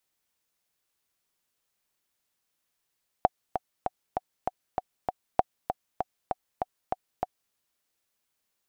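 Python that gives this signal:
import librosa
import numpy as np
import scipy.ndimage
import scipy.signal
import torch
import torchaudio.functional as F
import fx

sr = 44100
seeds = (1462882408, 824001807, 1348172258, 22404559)

y = fx.click_track(sr, bpm=196, beats=7, bars=2, hz=742.0, accent_db=8.0, level_db=-6.0)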